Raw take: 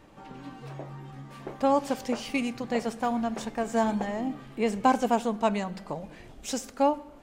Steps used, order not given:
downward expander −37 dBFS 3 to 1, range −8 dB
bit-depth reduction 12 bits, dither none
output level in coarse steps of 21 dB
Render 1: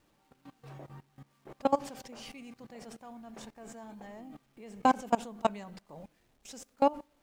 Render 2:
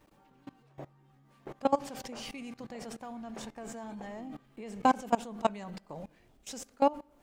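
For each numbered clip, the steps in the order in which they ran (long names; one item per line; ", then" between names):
output level in coarse steps, then downward expander, then bit-depth reduction
downward expander, then bit-depth reduction, then output level in coarse steps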